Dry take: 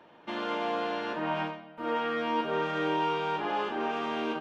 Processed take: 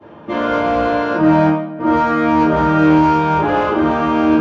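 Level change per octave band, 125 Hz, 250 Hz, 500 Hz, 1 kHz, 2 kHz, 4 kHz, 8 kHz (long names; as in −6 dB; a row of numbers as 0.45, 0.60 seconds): +23.5 dB, +21.5 dB, +14.5 dB, +15.0 dB, +12.5 dB, +6.0 dB, can't be measured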